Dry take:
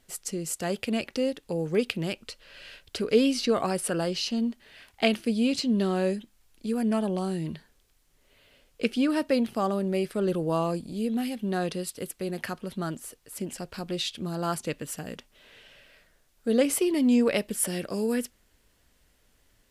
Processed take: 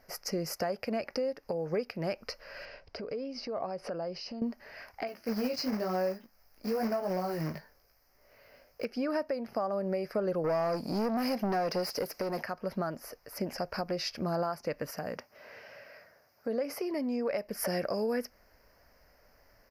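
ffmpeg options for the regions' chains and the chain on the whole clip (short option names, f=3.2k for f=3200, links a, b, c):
-filter_complex "[0:a]asettb=1/sr,asplit=3[a][b][c];[a]atrim=end=2.654[d];[b]atrim=start=2.65:end=4.42,asetpts=PTS-STARTPTS,afade=t=in:d=0.004:c=qsin,afade=t=out:st=1.766:d=0.004:c=qsin,lowpass=3.9k,equalizer=f=1.6k:w=1.2:g=-7,acompressor=threshold=-39dB:ratio=6:attack=3.2:release=140:knee=1:detection=peak[e];[c]atrim=start=4.416[f];[d][e]acrossfade=d=0.004:c1=hsin:c2=qsin[g];[g][f]acrossfade=d=0.004:c1=qsin:c2=hsin,asettb=1/sr,asplit=3[h][i][j];[h]atrim=end=5.074[k];[i]atrim=start=5.07:end=8.85,asetpts=PTS-STARTPTS,afade=t=in:d=0.004:c=qsin,afade=t=out:st=3.776:d=0.004:c=qsin,highshelf=f=5.9k:g=6,flanger=delay=16:depth=4.2:speed=1,acrusher=bits=3:mode=log:mix=0:aa=0.000001[l];[j]atrim=start=8.846[m];[k][l]acrossfade=d=0.004:c1=hsin:c2=qsin[n];[n][m]acrossfade=d=0.004:c1=qsin:c2=hsin,asettb=1/sr,asplit=3[o][p][q];[o]atrim=end=10.444[r];[p]atrim=start=10.44:end=12.43,asetpts=PTS-STARTPTS,afade=t=in:d=0.004:c=qsin,afade=t=out:st=1.986:d=0.004:c=qsin,equalizer=f=1.4k:t=o:w=2.8:g=-12,asplit=2[s][t];[t]highpass=f=720:p=1,volume=25dB,asoftclip=type=tanh:threshold=-20dB[u];[s][u]amix=inputs=2:normalize=0,lowpass=f=5.7k:p=1,volume=-6dB[v];[q]atrim=start=12.426[w];[r][v]acrossfade=d=0.004:c1=hsin:c2=qsin[x];[x][w]acrossfade=d=0.004:c1=qsin:c2=hsin,asettb=1/sr,asplit=3[y][z][aa];[y]atrim=end=14.904[ab];[z]atrim=start=14.9:end=17.3,asetpts=PTS-STARTPTS,afade=t=in:d=0.004:c=qsin,afade=t=out:st=2.396:d=0.004:c=qsin,highpass=f=79:w=0.5412,highpass=f=79:w=1.3066,acompressor=threshold=-36dB:ratio=2.5:attack=3.2:release=140:knee=1:detection=peak[ac];[aa]atrim=start=17.296[ad];[ab][ac]acrossfade=d=0.004:c1=hsin:c2=qsin[ae];[ae][ad]acrossfade=d=0.004:c1=qsin:c2=hsin,firequalizer=gain_entry='entry(350,0);entry(590,12);entry(880,8);entry(2200,4);entry(3500,-18);entry(5000,9);entry(7900,-20);entry(13000,3)':delay=0.05:min_phase=1,acompressor=threshold=-28dB:ratio=5,alimiter=limit=-22dB:level=0:latency=1:release=299"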